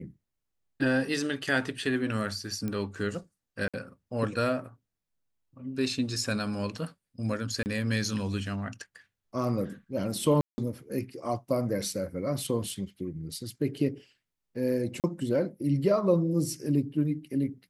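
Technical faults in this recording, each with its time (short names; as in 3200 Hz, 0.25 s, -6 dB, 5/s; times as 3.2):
2.68 pop -21 dBFS
3.68–3.74 gap 56 ms
7.63–7.66 gap 29 ms
10.41–10.58 gap 0.17 s
15–15.04 gap 38 ms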